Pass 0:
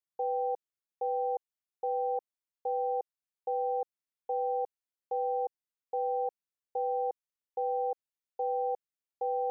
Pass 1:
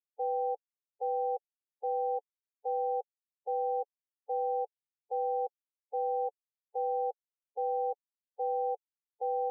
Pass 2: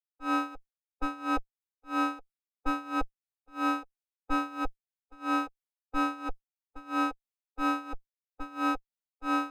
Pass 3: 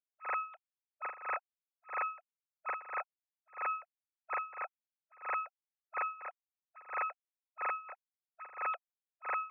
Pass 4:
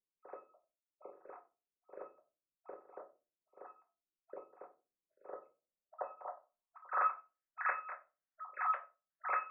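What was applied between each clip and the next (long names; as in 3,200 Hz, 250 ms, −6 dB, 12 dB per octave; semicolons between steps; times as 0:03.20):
spectral dynamics exaggerated over time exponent 3
lower of the sound and its delayed copy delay 7.1 ms; amplitude tremolo 3 Hz, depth 82%; multiband upward and downward expander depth 100%; level +8 dB
three sine waves on the formant tracks; level −8 dB
time-frequency cells dropped at random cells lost 29%; rectangular room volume 130 cubic metres, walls furnished, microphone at 1.1 metres; low-pass filter sweep 400 Hz → 1,700 Hz, 0:05.24–0:07.41; level −3 dB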